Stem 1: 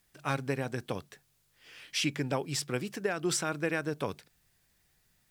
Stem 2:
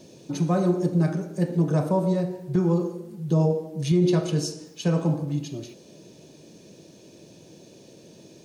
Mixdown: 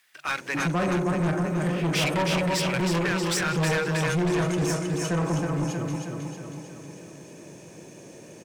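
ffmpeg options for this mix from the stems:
ffmpeg -i stem1.wav -i stem2.wav -filter_complex "[0:a]highpass=frequency=970:poles=1,equalizer=frequency=2000:width_type=o:width=2.5:gain=12,volume=2.5dB,asplit=3[link_01][link_02][link_03];[link_01]atrim=end=0.68,asetpts=PTS-STARTPTS,afade=type=out:start_time=0.676:duration=0.004:curve=hsin[link_04];[link_02]atrim=start=0.68:end=1.37,asetpts=PTS-STARTPTS,volume=0[link_05];[link_03]atrim=start=1.37,asetpts=PTS-STARTPTS,afade=type=in:duration=0.004:curve=hsin[link_06];[link_04][link_05][link_06]concat=n=3:v=0:a=1,asplit=2[link_07][link_08];[link_08]volume=-4.5dB[link_09];[1:a]equalizer=frequency=1000:width_type=o:width=1:gain=6,equalizer=frequency=2000:width_type=o:width=1:gain=10,equalizer=frequency=4000:width_type=o:width=1:gain=-11,equalizer=frequency=8000:width_type=o:width=1:gain=8,adelay=250,volume=1dB,asplit=2[link_10][link_11];[link_11]volume=-5dB[link_12];[link_09][link_12]amix=inputs=2:normalize=0,aecho=0:1:317|634|951|1268|1585|1902|2219|2536:1|0.55|0.303|0.166|0.0915|0.0503|0.0277|0.0152[link_13];[link_07][link_10][link_13]amix=inputs=3:normalize=0,asoftclip=type=tanh:threshold=-21dB" out.wav

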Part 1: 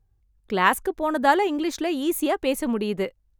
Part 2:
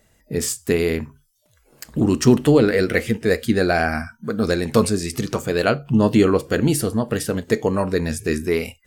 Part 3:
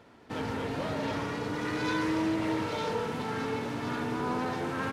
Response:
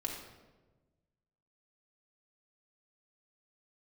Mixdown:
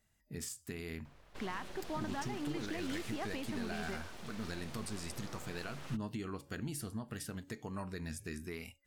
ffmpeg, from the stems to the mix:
-filter_complex "[0:a]lowpass=3700,acompressor=threshold=-30dB:ratio=6,adelay=900,volume=-3.5dB[link_01];[1:a]acompressor=threshold=-17dB:ratio=4,equalizer=frequency=310:width=1.5:gain=-2,bandreject=frequency=280.3:width_type=h:width=4,bandreject=frequency=560.6:width_type=h:width=4,bandreject=frequency=840.9:width_type=h:width=4,volume=-16dB[link_02];[2:a]acrossover=split=120|3000[link_03][link_04][link_05];[link_04]acompressor=threshold=-43dB:ratio=5[link_06];[link_03][link_06][link_05]amix=inputs=3:normalize=0,aeval=exprs='abs(val(0))':channel_layout=same,adelay=1050,volume=-5dB[link_07];[link_01][link_02]amix=inputs=2:normalize=0,equalizer=frequency=500:width_type=o:width=0.68:gain=-10.5,alimiter=level_in=6.5dB:limit=-24dB:level=0:latency=1:release=94,volume=-6.5dB,volume=0dB[link_08];[link_07][link_08]amix=inputs=2:normalize=0"

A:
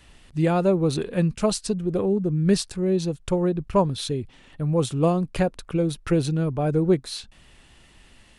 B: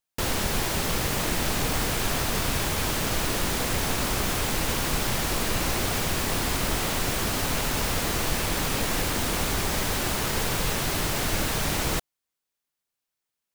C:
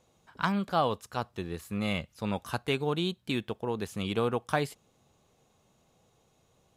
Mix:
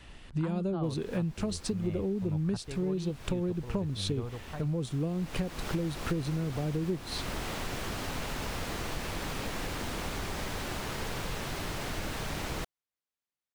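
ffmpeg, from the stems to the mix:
ffmpeg -i stem1.wav -i stem2.wav -i stem3.wav -filter_complex "[0:a]acrossover=split=410|3000[link_01][link_02][link_03];[link_02]acompressor=threshold=-35dB:ratio=6[link_04];[link_01][link_04][link_03]amix=inputs=3:normalize=0,volume=2dB[link_05];[1:a]adelay=650,volume=-7.5dB[link_06];[2:a]aemphasis=mode=reproduction:type=riaa,asubboost=boost=8:cutoff=67,volume=-16.5dB,asplit=2[link_07][link_08];[link_08]apad=whole_len=625829[link_09];[link_06][link_09]sidechaincompress=threshold=-52dB:ratio=4:attack=6.7:release=807[link_10];[link_05][link_10]amix=inputs=2:normalize=0,highshelf=frequency=6800:gain=-10.5,acompressor=threshold=-29dB:ratio=6,volume=0dB[link_11];[link_07][link_11]amix=inputs=2:normalize=0" out.wav

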